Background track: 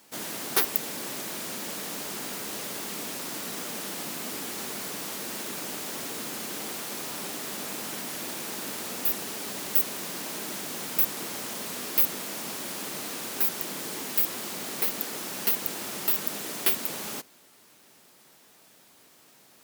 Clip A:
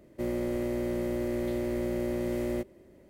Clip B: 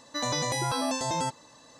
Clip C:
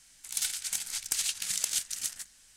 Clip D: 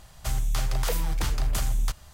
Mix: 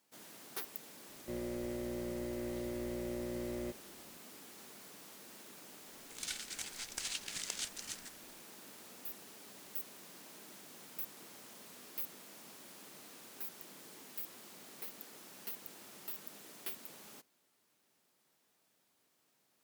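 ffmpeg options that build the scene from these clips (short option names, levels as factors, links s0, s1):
-filter_complex "[0:a]volume=0.112[s0];[3:a]aemphasis=mode=reproduction:type=50fm[s1];[1:a]atrim=end=3.09,asetpts=PTS-STARTPTS,volume=0.335,afade=t=in:d=0.004:c=hsin,afade=t=out:st=3.086:d=0.004:c=hsin,adelay=1090[s2];[s1]atrim=end=2.56,asetpts=PTS-STARTPTS,volume=0.668,afade=t=in:d=0.004:c=hsin,afade=t=out:st=2.556:d=0.004:c=hsin,adelay=5860[s3];[s0][s2][s3]amix=inputs=3:normalize=0"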